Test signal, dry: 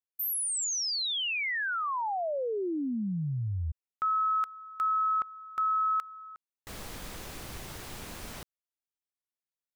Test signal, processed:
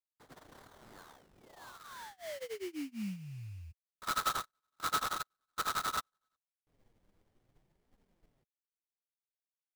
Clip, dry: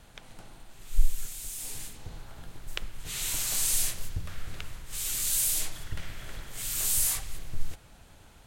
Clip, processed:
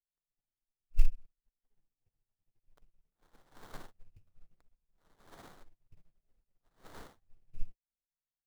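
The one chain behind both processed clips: Wiener smoothing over 25 samples; flange 0.63 Hz, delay 3.8 ms, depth 6.6 ms, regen -16%; sample-rate reducer 2600 Hz, jitter 20%; upward expander 2.5:1, over -48 dBFS; gain +1.5 dB

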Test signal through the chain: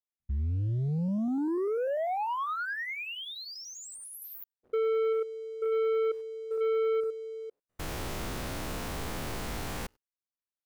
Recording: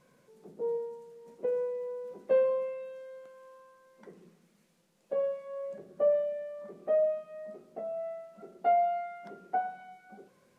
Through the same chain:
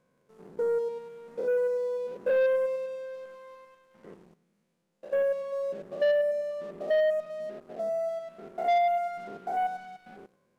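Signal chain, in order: stepped spectrum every 0.1 s; high shelf 2100 Hz -6.5 dB; sample leveller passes 2

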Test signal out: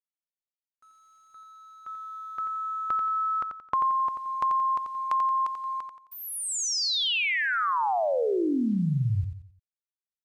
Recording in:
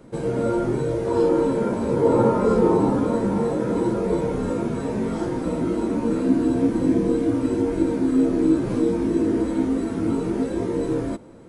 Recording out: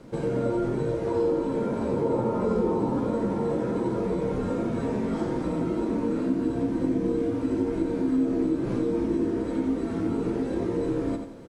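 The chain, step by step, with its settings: dynamic EQ 1600 Hz, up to -3 dB, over -33 dBFS, Q 1.6; compressor 2.5:1, threshold -26 dBFS; bit-crush 10-bit; air absorption 53 m; feedback echo 88 ms, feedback 37%, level -7 dB

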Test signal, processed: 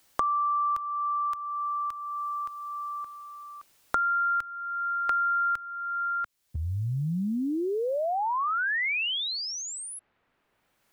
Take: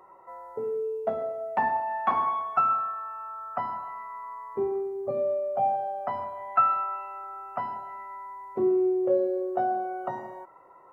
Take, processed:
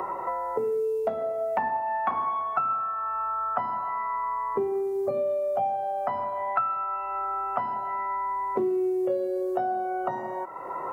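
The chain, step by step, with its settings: three-band squash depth 100%

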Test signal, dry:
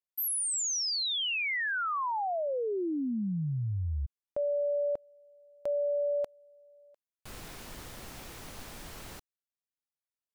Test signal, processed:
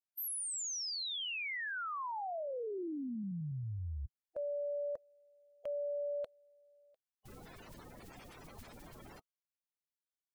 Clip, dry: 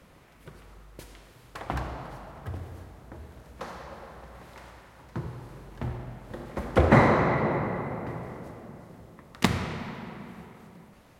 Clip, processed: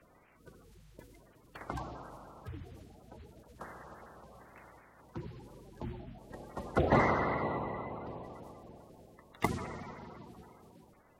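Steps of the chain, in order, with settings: bin magnitudes rounded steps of 30 dB; gain -7.5 dB

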